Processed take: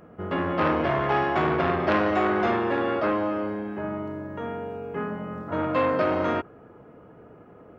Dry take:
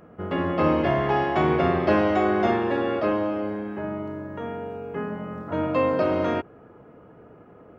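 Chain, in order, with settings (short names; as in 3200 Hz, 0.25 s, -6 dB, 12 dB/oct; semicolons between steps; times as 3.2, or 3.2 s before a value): dynamic EQ 1300 Hz, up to +5 dB, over -41 dBFS, Q 2.1; core saturation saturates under 1300 Hz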